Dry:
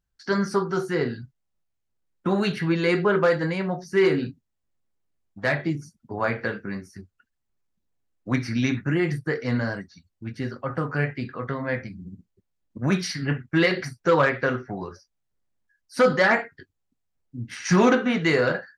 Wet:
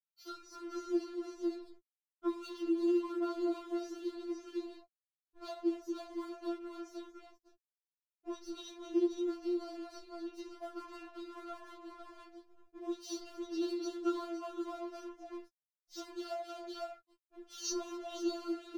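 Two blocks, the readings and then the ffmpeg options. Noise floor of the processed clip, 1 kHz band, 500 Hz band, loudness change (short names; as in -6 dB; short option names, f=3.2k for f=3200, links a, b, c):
under -85 dBFS, -17.5 dB, -15.0 dB, -15.5 dB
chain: -filter_complex "[0:a]equalizer=f=1.4k:t=o:w=1.6:g=-2.5,asplit=2[a][b];[b]adelay=15,volume=-4.5dB[c];[a][c]amix=inputs=2:normalize=0,aresample=16000,volume=11dB,asoftclip=hard,volume=-11dB,aresample=44100,asuperstop=centerf=2000:order=8:qfactor=1.5,asplit=2[d][e];[e]aecho=0:1:56|234|237|507:0.106|0.168|0.178|0.376[f];[d][f]amix=inputs=2:normalize=0,adynamicequalizer=threshold=0.0316:dfrequency=560:dqfactor=1.1:tfrequency=560:tqfactor=1.1:attack=5:release=100:ratio=0.375:range=1.5:mode=boostabove:tftype=bell,flanger=delay=16.5:depth=3.5:speed=1.2,acompressor=threshold=-37dB:ratio=4,aeval=exprs='sgn(val(0))*max(abs(val(0))-0.00188,0)':c=same,afftfilt=real='re*4*eq(mod(b,16),0)':imag='im*4*eq(mod(b,16),0)':win_size=2048:overlap=0.75,volume=3.5dB"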